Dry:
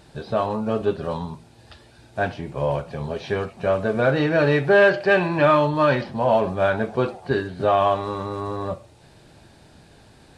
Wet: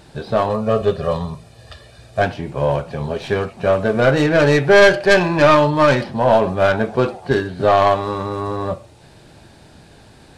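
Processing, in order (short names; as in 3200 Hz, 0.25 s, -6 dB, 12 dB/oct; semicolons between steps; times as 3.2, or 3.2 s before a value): tracing distortion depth 0.11 ms; 0.49–2.22 comb 1.7 ms, depth 66%; gain +5 dB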